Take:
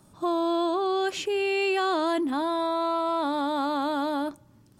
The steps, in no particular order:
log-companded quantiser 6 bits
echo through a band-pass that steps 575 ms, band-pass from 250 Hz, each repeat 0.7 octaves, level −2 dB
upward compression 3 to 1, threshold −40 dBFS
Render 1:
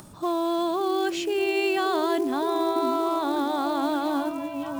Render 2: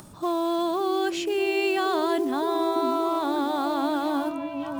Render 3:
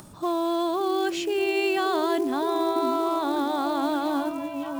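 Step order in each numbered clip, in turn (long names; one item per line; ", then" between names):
upward compression, then echo through a band-pass that steps, then log-companded quantiser
upward compression, then log-companded quantiser, then echo through a band-pass that steps
echo through a band-pass that steps, then upward compression, then log-companded quantiser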